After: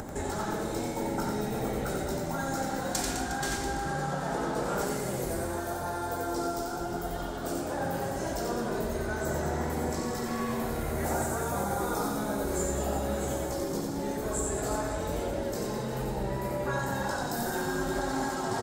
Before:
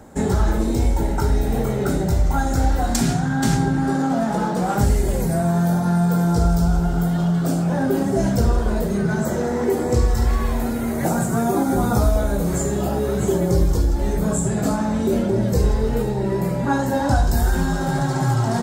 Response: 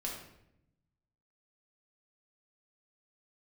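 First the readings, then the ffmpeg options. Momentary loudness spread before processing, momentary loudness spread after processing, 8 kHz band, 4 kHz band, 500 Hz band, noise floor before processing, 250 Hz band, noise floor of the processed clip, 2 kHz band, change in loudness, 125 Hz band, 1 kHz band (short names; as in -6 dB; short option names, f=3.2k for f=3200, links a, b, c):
3 LU, 3 LU, -5.5 dB, -5.5 dB, -8.5 dB, -23 dBFS, -13.0 dB, -35 dBFS, -5.5 dB, -11.5 dB, -16.5 dB, -7.0 dB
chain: -af "acompressor=mode=upward:threshold=-22dB:ratio=2.5,afftfilt=real='re*lt(hypot(re,im),0.501)':imag='im*lt(hypot(re,im),0.501)':win_size=1024:overlap=0.75,aecho=1:1:90|207|359.1|556.8|813.9:0.631|0.398|0.251|0.158|0.1,volume=-7.5dB"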